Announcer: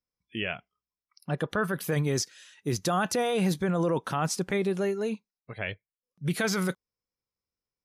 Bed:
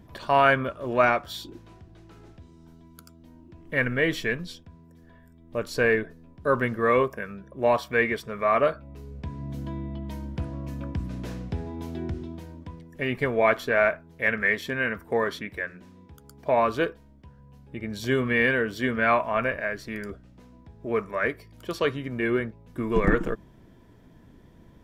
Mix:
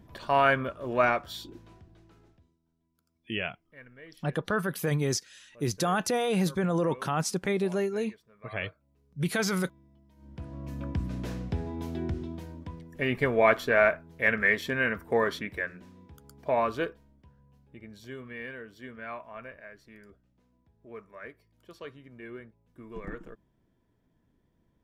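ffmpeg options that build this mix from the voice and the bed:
-filter_complex "[0:a]adelay=2950,volume=-0.5dB[a];[1:a]volume=22dB,afade=t=out:st=1.66:d=0.93:silence=0.0749894,afade=t=in:st=10.16:d=0.8:silence=0.0530884,afade=t=out:st=15.48:d=2.65:silence=0.133352[b];[a][b]amix=inputs=2:normalize=0"

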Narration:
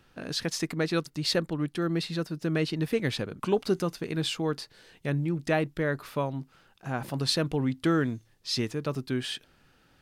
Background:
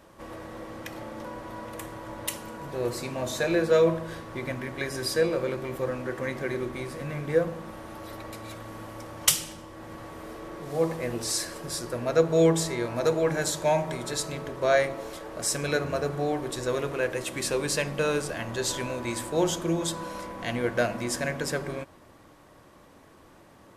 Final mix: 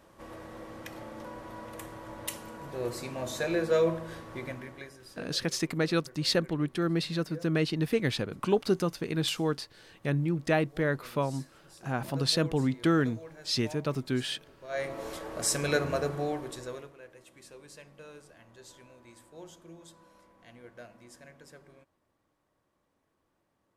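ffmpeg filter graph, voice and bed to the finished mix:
-filter_complex "[0:a]adelay=5000,volume=0dB[a];[1:a]volume=17dB,afade=t=out:st=4.38:d=0.61:silence=0.133352,afade=t=in:st=14.68:d=0.4:silence=0.0841395,afade=t=out:st=15.87:d=1.07:silence=0.0749894[b];[a][b]amix=inputs=2:normalize=0"

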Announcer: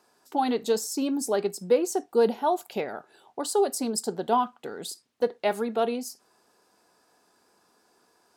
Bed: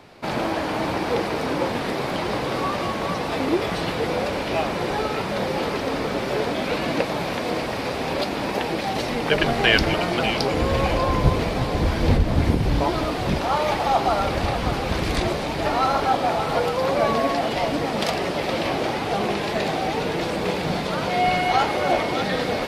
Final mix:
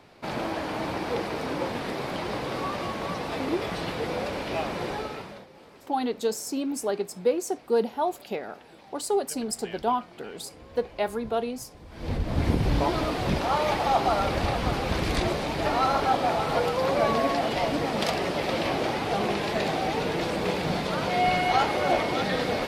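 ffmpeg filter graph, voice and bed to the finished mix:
-filter_complex "[0:a]adelay=5550,volume=-2dB[a];[1:a]volume=17.5dB,afade=t=out:st=4.85:d=0.61:silence=0.0944061,afade=t=in:st=11.89:d=0.7:silence=0.0668344[b];[a][b]amix=inputs=2:normalize=0"

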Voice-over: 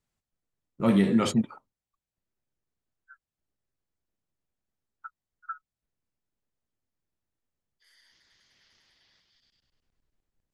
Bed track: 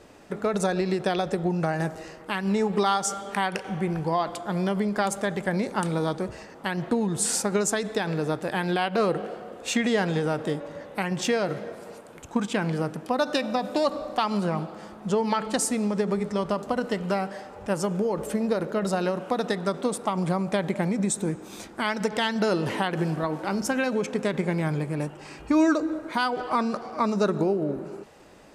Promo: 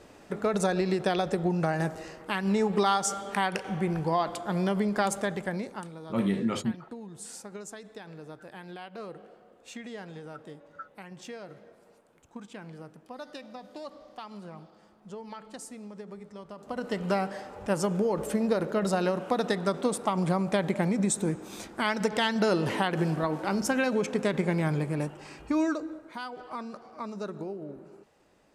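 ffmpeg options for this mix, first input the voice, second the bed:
-filter_complex "[0:a]adelay=5300,volume=-5.5dB[a];[1:a]volume=15dB,afade=t=out:st=5.13:d=0.79:silence=0.158489,afade=t=in:st=16.56:d=0.55:silence=0.149624,afade=t=out:st=24.91:d=1.14:silence=0.251189[b];[a][b]amix=inputs=2:normalize=0"

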